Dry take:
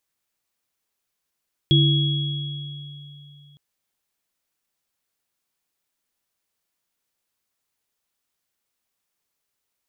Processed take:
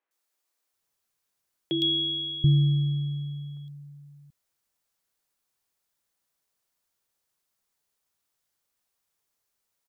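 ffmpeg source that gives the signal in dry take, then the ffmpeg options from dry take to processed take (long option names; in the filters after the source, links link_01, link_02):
-f lavfi -i "aevalsrc='0.211*pow(10,-3*t/3.12)*sin(2*PI*144*t)+0.1*pow(10,-3*t/1.61)*sin(2*PI*331*t)+0.133*pow(10,-3*t/2.9)*sin(2*PI*3330*t)':duration=1.86:sample_rate=44100"
-filter_complex "[0:a]acrossover=split=260|2600[link_01][link_02][link_03];[link_03]adelay=110[link_04];[link_01]adelay=730[link_05];[link_05][link_02][link_04]amix=inputs=3:normalize=0"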